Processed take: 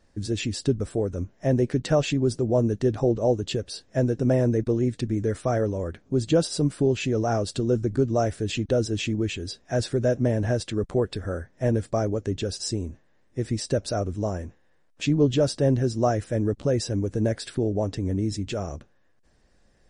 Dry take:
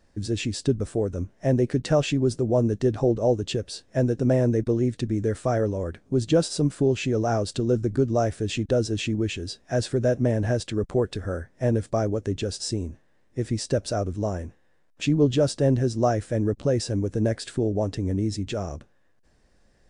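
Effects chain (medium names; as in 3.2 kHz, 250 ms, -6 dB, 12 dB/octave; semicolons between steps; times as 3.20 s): MP3 40 kbps 44.1 kHz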